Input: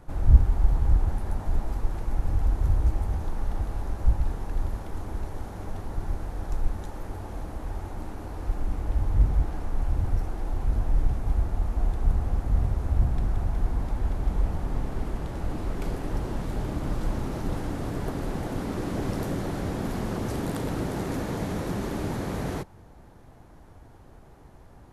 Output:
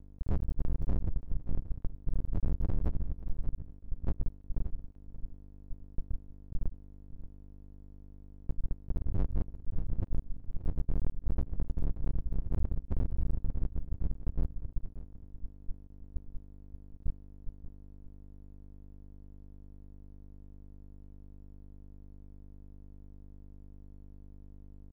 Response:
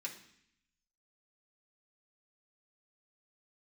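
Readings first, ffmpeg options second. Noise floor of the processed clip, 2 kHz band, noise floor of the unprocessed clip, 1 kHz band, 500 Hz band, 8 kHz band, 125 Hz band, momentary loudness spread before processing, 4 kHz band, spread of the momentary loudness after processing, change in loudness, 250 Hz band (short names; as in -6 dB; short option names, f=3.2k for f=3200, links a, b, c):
-51 dBFS, under -20 dB, -50 dBFS, -21.5 dB, -16.5 dB, n/a, -10.5 dB, 11 LU, under -25 dB, 19 LU, -9.5 dB, -12.0 dB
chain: -filter_complex "[0:a]afftfilt=real='re*gte(hypot(re,im),0.891)':imag='im*gte(hypot(re,im),0.891)':win_size=1024:overlap=0.75,dynaudnorm=f=100:g=3:m=9.5dB,alimiter=limit=-5.5dB:level=0:latency=1:release=416,asoftclip=type=tanh:threshold=-23dB,aeval=exprs='val(0)+0.00398*(sin(2*PI*50*n/s)+sin(2*PI*2*50*n/s)/2+sin(2*PI*3*50*n/s)/3+sin(2*PI*4*50*n/s)/4+sin(2*PI*5*50*n/s)/5)':c=same,aeval=exprs='max(val(0),0)':c=same,asplit=2[a][b];[b]aecho=0:1:580:0.2[c];[a][c]amix=inputs=2:normalize=0,volume=1dB"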